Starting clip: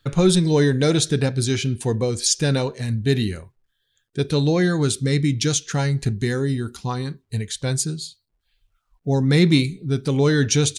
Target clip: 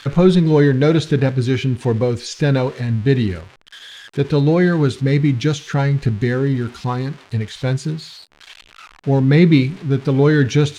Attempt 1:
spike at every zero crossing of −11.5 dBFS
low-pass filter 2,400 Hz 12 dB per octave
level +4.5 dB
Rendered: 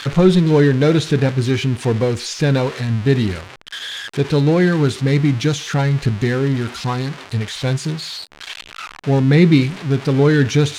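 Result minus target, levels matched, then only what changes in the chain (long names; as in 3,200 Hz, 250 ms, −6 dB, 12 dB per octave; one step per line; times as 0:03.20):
spike at every zero crossing: distortion +9 dB
change: spike at every zero crossing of −21 dBFS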